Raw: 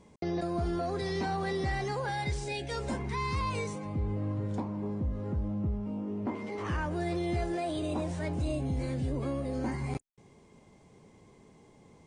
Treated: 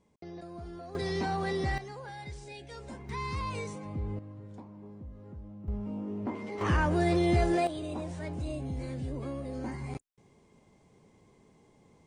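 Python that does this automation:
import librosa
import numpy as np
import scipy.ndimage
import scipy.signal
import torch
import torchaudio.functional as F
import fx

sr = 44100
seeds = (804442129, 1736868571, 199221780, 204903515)

y = fx.gain(x, sr, db=fx.steps((0.0, -12.0), (0.95, 0.5), (1.78, -10.0), (3.09, -3.0), (4.19, -13.0), (5.68, -1.0), (6.61, 6.0), (7.67, -4.0)))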